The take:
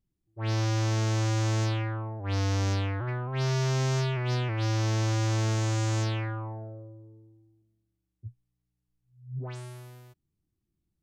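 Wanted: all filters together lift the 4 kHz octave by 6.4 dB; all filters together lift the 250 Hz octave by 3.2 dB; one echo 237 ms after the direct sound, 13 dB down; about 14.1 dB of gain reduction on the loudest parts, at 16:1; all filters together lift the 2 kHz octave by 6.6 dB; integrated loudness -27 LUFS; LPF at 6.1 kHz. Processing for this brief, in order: low-pass 6.1 kHz; peaking EQ 250 Hz +5 dB; peaking EQ 2 kHz +6.5 dB; peaking EQ 4 kHz +7 dB; compression 16:1, threshold -36 dBFS; delay 237 ms -13 dB; trim +13 dB

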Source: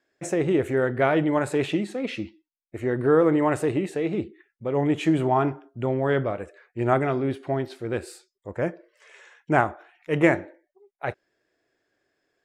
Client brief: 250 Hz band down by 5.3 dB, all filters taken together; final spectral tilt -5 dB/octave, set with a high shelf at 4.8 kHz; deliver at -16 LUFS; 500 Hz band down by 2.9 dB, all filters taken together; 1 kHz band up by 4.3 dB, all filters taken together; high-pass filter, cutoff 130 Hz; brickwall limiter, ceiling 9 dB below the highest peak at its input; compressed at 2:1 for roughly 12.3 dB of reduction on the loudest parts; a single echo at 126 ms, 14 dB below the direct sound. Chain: high-pass 130 Hz; peaking EQ 250 Hz -6 dB; peaking EQ 500 Hz -4 dB; peaking EQ 1 kHz +8 dB; treble shelf 4.8 kHz -5 dB; compression 2:1, threshold -36 dBFS; peak limiter -24.5 dBFS; delay 126 ms -14 dB; trim +21.5 dB

